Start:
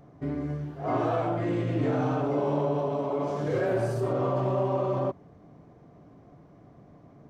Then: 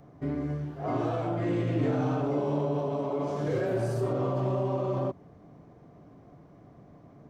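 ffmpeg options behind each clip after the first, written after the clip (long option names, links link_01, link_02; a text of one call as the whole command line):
ffmpeg -i in.wav -filter_complex "[0:a]acrossover=split=420|3000[link_01][link_02][link_03];[link_02]acompressor=threshold=-32dB:ratio=6[link_04];[link_01][link_04][link_03]amix=inputs=3:normalize=0" out.wav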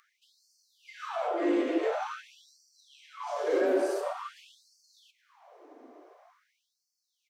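ffmpeg -i in.wav -filter_complex "[0:a]asplit=6[link_01][link_02][link_03][link_04][link_05][link_06];[link_02]adelay=216,afreqshift=-98,volume=-20dB[link_07];[link_03]adelay=432,afreqshift=-196,volume=-24.3dB[link_08];[link_04]adelay=648,afreqshift=-294,volume=-28.6dB[link_09];[link_05]adelay=864,afreqshift=-392,volume=-32.9dB[link_10];[link_06]adelay=1080,afreqshift=-490,volume=-37.2dB[link_11];[link_01][link_07][link_08][link_09][link_10][link_11]amix=inputs=6:normalize=0,afftfilt=real='re*gte(b*sr/1024,240*pow(4400/240,0.5+0.5*sin(2*PI*0.47*pts/sr)))':imag='im*gte(b*sr/1024,240*pow(4400/240,0.5+0.5*sin(2*PI*0.47*pts/sr)))':win_size=1024:overlap=0.75,volume=3.5dB" out.wav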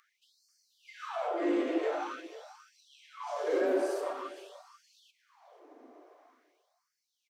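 ffmpeg -i in.wav -af "aecho=1:1:487:0.158,volume=-2.5dB" out.wav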